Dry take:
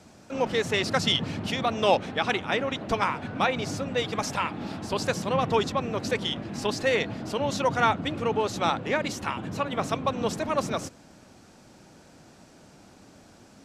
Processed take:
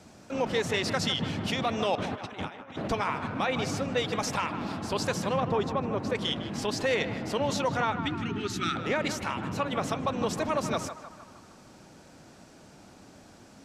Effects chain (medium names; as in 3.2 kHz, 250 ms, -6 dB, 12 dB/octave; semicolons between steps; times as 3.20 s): 5.40–6.15 s: treble shelf 2.3 kHz -12 dB; 7.92–8.76 s: time-frequency box 420–1200 Hz -24 dB; peak limiter -18 dBFS, peak gain reduction 8 dB; 1.95–2.88 s: compressor with a negative ratio -37 dBFS, ratio -0.5; 7.77–8.50 s: distance through air 54 m; band-passed feedback delay 155 ms, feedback 61%, band-pass 1.1 kHz, level -9 dB